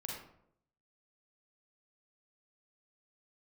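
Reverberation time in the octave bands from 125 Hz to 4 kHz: 0.85, 0.75, 0.80, 0.65, 0.50, 0.40 seconds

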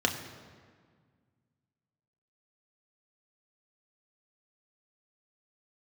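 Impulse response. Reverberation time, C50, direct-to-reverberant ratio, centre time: 1.8 s, 8.5 dB, 2.5 dB, 28 ms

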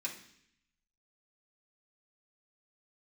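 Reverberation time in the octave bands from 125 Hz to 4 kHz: 1.0, 0.90, 0.70, 0.65, 0.85, 0.80 seconds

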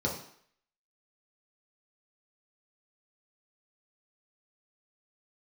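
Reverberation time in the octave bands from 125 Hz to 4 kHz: 0.45, 0.55, 0.60, 0.65, 0.65, 0.60 seconds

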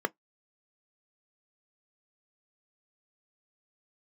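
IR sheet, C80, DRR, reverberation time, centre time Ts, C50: 53.0 dB, 13.0 dB, 0.10 s, 2 ms, 37.0 dB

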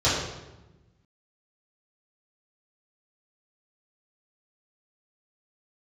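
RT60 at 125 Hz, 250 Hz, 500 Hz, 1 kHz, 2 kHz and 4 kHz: 1.7, 1.6, 1.2, 1.0, 0.85, 0.75 seconds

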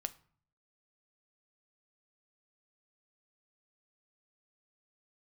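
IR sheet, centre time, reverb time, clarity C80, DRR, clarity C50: 3 ms, 0.50 s, 23.0 dB, 10.5 dB, 19.0 dB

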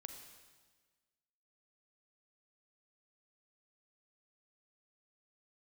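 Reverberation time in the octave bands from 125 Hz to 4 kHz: 1.5, 1.5, 1.5, 1.4, 1.4, 1.4 seconds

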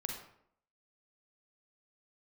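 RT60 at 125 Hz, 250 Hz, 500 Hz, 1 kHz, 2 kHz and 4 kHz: 0.65, 0.75, 0.70, 0.65, 0.55, 0.45 seconds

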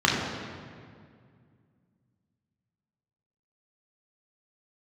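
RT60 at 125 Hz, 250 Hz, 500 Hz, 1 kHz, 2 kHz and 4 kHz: 3.1, 2.8, 2.2, 2.0, 1.8, 1.4 seconds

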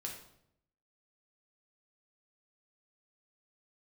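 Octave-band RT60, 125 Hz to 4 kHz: 1.0, 0.90, 0.80, 0.65, 0.60, 0.55 seconds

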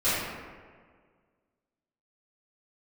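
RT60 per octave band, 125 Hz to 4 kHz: 1.8, 1.9, 1.8, 1.6, 1.4, 0.90 seconds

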